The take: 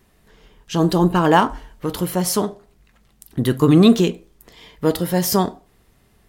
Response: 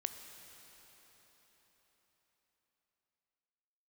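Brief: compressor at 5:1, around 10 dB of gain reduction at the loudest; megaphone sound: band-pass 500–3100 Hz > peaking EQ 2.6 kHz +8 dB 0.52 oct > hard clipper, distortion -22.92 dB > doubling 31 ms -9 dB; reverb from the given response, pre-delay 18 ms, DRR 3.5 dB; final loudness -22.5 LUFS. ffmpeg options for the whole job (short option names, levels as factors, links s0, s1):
-filter_complex "[0:a]acompressor=threshold=0.112:ratio=5,asplit=2[s0][s1];[1:a]atrim=start_sample=2205,adelay=18[s2];[s1][s2]afir=irnorm=-1:irlink=0,volume=0.708[s3];[s0][s3]amix=inputs=2:normalize=0,highpass=500,lowpass=3100,equalizer=f=2600:t=o:w=0.52:g=8,asoftclip=type=hard:threshold=0.2,asplit=2[s4][s5];[s5]adelay=31,volume=0.355[s6];[s4][s6]amix=inputs=2:normalize=0,volume=2.11"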